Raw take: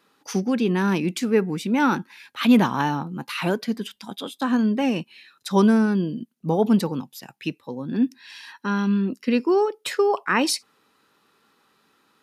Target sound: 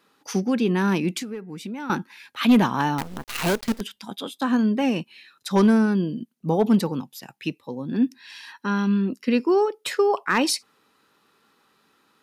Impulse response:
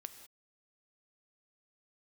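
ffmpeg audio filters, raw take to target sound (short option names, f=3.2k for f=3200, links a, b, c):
-filter_complex "[0:a]asoftclip=type=hard:threshold=-10.5dB,asettb=1/sr,asplit=3[a][b][c];[a]atrim=end=1.194[d];[b]atrim=start=1.19:end=1.9,asetpts=PTS-STARTPTS,afade=t=in:d=0.004:c=qsin,afade=t=out:st=0.706:d=0.004:c=qsin,acompressor=threshold=-30dB:ratio=16[e];[c]atrim=start=1.896[f];[d][e]acrossfade=d=0.004:c1=hsin:c2=qsin[g];[g][f]acrossfade=d=0.004:c1=qsin:c2=hsin,asettb=1/sr,asplit=3[h][i][j];[h]atrim=end=2.984[k];[i]atrim=start=2.98:end=3.81,asetpts=PTS-STARTPTS,afade=t=in:d=0.004:c=qsin,afade=t=out:st=0.826:d=0.004:c=qsin,acrusher=bits=5:dc=4:mix=0:aa=0.000001[l];[j]atrim=start=3.806[m];[k][l]acrossfade=d=0.004:c1=hsin:c2=qsin[n];[n][m]acrossfade=d=0.004:c1=qsin:c2=hsin,asettb=1/sr,asplit=3[o][p][q];[o]atrim=end=7.484[r];[p]atrim=start=7.48:end=7.9,asetpts=PTS-STARTPTS,afade=t=in:d=0.004:c=qsin,afade=t=out:st=0.416:d=0.004:c=qsin,equalizer=f=1.5k:w=3.8:g=-8[s];[q]atrim=start=7.896[t];[r][s]acrossfade=d=0.004:c1=hsin:c2=qsin[u];[u][t]acrossfade=d=0.004:c1=qsin:c2=hsin"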